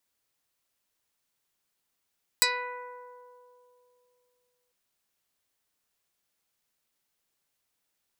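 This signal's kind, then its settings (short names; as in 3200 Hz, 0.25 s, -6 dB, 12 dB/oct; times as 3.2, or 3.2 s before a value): plucked string B4, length 2.30 s, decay 3.04 s, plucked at 0.16, dark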